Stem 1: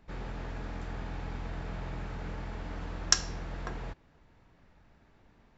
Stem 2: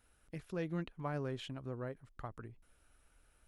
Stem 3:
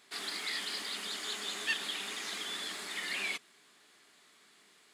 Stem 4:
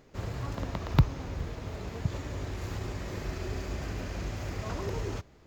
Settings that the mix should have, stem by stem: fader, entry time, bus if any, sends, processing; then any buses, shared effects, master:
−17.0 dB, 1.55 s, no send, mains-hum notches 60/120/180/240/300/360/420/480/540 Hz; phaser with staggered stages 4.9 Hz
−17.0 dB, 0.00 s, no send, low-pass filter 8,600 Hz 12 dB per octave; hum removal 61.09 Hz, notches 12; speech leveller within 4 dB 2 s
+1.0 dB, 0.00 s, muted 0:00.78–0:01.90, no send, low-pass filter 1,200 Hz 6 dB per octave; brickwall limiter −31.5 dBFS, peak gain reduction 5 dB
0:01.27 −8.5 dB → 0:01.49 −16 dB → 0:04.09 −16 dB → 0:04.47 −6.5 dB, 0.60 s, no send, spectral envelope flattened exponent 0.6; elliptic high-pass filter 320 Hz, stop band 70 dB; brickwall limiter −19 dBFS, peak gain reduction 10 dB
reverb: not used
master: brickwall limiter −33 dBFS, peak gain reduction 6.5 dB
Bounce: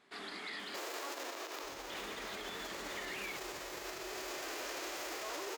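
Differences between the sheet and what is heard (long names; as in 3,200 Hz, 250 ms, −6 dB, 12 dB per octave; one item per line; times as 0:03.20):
stem 2: muted
stem 4 −8.5 dB → +2.0 dB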